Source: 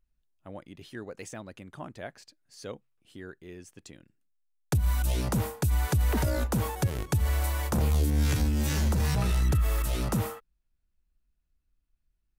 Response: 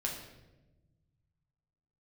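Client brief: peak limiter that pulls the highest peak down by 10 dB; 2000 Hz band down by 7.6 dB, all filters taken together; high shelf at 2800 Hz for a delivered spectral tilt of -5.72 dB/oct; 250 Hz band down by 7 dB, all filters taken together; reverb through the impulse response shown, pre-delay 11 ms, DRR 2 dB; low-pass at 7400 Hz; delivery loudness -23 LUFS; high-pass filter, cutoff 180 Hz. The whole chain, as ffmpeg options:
-filter_complex "[0:a]highpass=180,lowpass=7.4k,equalizer=f=250:t=o:g=-7,equalizer=f=2k:t=o:g=-7.5,highshelf=f=2.8k:g=-7,alimiter=level_in=6.5dB:limit=-24dB:level=0:latency=1,volume=-6.5dB,asplit=2[a][b];[1:a]atrim=start_sample=2205,adelay=11[c];[b][c]afir=irnorm=-1:irlink=0,volume=-4.5dB[d];[a][d]amix=inputs=2:normalize=0,volume=16.5dB"

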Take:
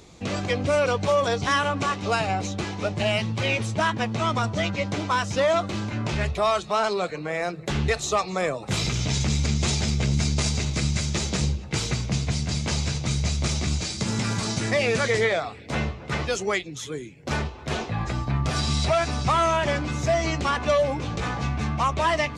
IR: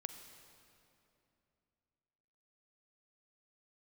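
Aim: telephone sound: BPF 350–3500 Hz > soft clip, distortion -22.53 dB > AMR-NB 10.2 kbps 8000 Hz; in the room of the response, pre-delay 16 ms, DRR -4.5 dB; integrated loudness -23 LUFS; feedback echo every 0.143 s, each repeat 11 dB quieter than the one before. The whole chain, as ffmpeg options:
-filter_complex "[0:a]aecho=1:1:143|286|429:0.282|0.0789|0.0221,asplit=2[a][b];[1:a]atrim=start_sample=2205,adelay=16[c];[b][c]afir=irnorm=-1:irlink=0,volume=7dB[d];[a][d]amix=inputs=2:normalize=0,highpass=350,lowpass=3.5k,asoftclip=threshold=-8.5dB,volume=0.5dB" -ar 8000 -c:a libopencore_amrnb -b:a 10200

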